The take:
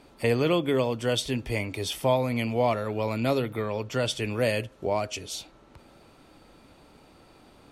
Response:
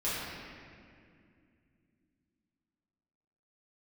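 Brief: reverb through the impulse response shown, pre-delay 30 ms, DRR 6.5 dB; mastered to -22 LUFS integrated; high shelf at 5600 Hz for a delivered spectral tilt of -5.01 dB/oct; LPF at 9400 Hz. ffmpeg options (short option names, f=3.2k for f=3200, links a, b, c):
-filter_complex "[0:a]lowpass=9.4k,highshelf=f=5.6k:g=-6.5,asplit=2[a][b];[1:a]atrim=start_sample=2205,adelay=30[c];[b][c]afir=irnorm=-1:irlink=0,volume=-14.5dB[d];[a][d]amix=inputs=2:normalize=0,volume=4.5dB"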